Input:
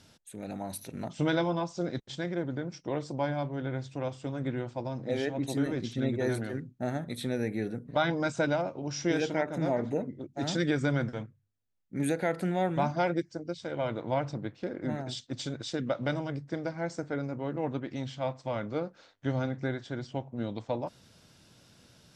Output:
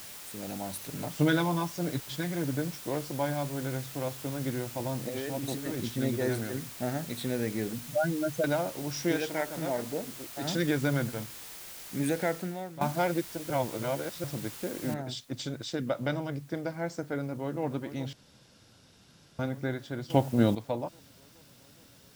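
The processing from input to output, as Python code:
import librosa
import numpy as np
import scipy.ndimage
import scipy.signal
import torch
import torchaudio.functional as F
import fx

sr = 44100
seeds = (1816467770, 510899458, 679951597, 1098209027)

y = fx.comb(x, sr, ms=6.8, depth=0.65, at=(0.86, 2.75))
y = fx.over_compress(y, sr, threshold_db=-34.0, ratio=-1.0, at=(4.71, 5.89))
y = fx.spec_expand(y, sr, power=3.0, at=(7.73, 8.44))
y = fx.low_shelf(y, sr, hz=410.0, db=-7.0, at=(9.16, 10.45))
y = fx.noise_floor_step(y, sr, seeds[0], at_s=14.94, before_db=-45, after_db=-62, tilt_db=0.0)
y = fx.echo_throw(y, sr, start_s=17.2, length_s=0.43, ms=420, feedback_pct=80, wet_db=-12.5)
y = fx.edit(y, sr, fx.fade_out_to(start_s=12.29, length_s=0.52, curve='qua', floor_db=-14.0),
    fx.reverse_span(start_s=13.5, length_s=0.74),
    fx.room_tone_fill(start_s=18.13, length_s=1.26),
    fx.clip_gain(start_s=20.1, length_s=0.45, db=11.0), tone=tone)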